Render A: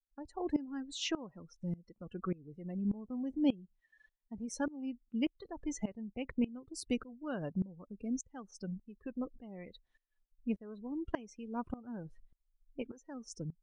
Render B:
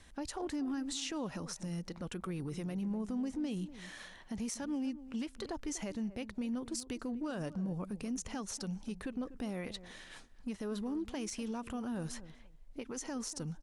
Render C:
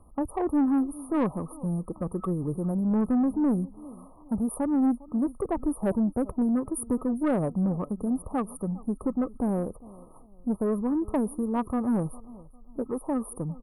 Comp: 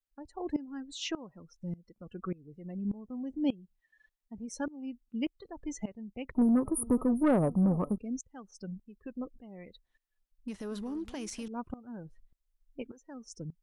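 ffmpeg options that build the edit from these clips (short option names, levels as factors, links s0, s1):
-filter_complex "[0:a]asplit=3[s0][s1][s2];[s0]atrim=end=6.352[s3];[2:a]atrim=start=6.348:end=7.982[s4];[s1]atrim=start=7.978:end=10.482[s5];[1:a]atrim=start=10.478:end=11.482[s6];[s2]atrim=start=11.478[s7];[s3][s4]acrossfade=d=0.004:c1=hsin:c2=hsin[s8];[s8][s5]acrossfade=d=0.004:c1=hsin:c2=hsin[s9];[s9][s6]acrossfade=d=0.004:c1=hsin:c2=hsin[s10];[s10][s7]acrossfade=d=0.004:c1=hsin:c2=hsin"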